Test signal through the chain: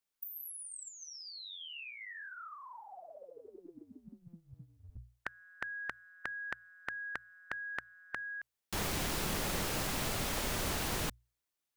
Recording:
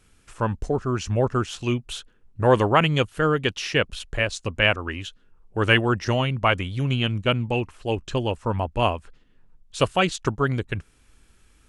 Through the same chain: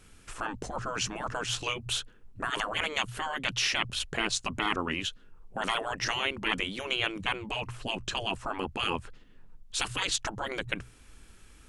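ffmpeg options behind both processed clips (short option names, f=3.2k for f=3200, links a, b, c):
-af "bandreject=f=60:t=h:w=6,bandreject=f=120:t=h:w=6,afftfilt=real='re*lt(hypot(re,im),0.141)':imag='im*lt(hypot(re,im),0.141)':win_size=1024:overlap=0.75,volume=3.5dB"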